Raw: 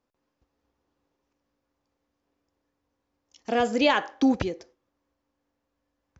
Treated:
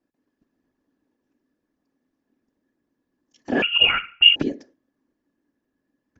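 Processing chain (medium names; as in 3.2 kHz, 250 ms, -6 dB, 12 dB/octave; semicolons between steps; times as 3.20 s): whisper effect; small resonant body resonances 270/1700 Hz, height 15 dB, ringing for 35 ms; 3.62–4.36 s: frequency inversion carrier 3.1 kHz; trim -4 dB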